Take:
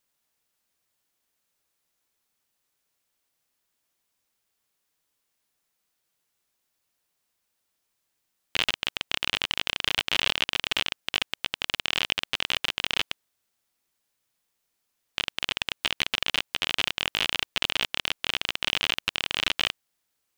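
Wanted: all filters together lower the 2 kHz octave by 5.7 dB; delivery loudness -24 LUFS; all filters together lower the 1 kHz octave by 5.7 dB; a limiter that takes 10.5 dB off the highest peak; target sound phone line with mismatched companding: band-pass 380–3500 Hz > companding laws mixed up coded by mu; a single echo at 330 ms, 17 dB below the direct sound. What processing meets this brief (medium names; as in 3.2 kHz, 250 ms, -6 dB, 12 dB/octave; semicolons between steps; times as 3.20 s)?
peaking EQ 1 kHz -5.5 dB; peaking EQ 2 kHz -5.5 dB; peak limiter -17 dBFS; band-pass 380–3500 Hz; delay 330 ms -17 dB; companding laws mixed up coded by mu; trim +14 dB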